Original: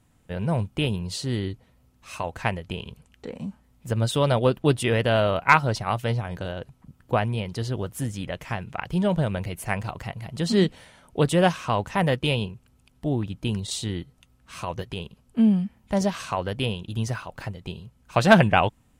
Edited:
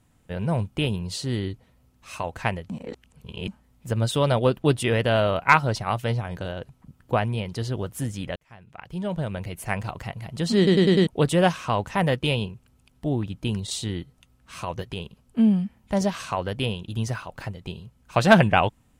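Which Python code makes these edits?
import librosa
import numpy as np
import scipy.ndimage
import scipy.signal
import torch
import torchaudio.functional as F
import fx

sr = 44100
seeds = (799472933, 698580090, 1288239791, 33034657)

y = fx.edit(x, sr, fx.reverse_span(start_s=2.7, length_s=0.78),
    fx.fade_in_span(start_s=8.36, length_s=1.43),
    fx.stutter_over(start_s=10.57, slice_s=0.1, count=5), tone=tone)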